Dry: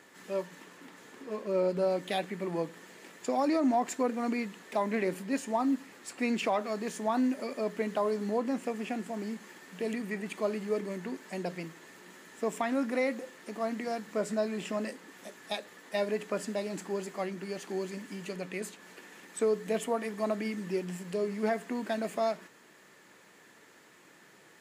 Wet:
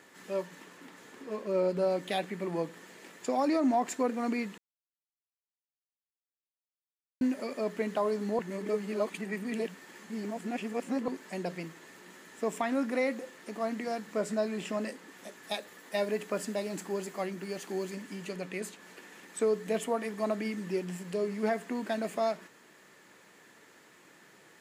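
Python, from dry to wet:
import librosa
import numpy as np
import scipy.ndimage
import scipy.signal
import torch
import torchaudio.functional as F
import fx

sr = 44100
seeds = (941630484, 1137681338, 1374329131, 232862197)

y = fx.high_shelf(x, sr, hz=12000.0, db=9.0, at=(15.43, 17.95))
y = fx.edit(y, sr, fx.silence(start_s=4.58, length_s=2.63),
    fx.reverse_span(start_s=8.39, length_s=2.69), tone=tone)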